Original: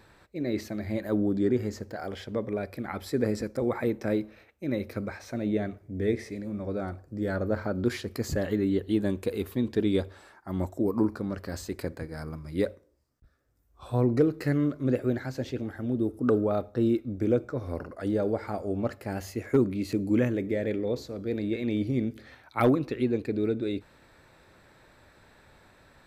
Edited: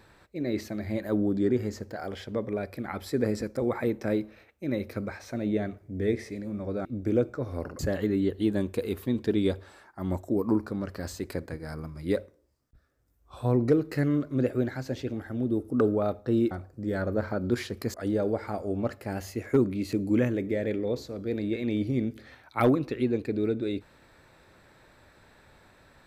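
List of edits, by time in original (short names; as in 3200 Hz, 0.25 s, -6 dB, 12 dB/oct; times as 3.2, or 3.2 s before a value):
6.85–8.28 swap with 17–17.94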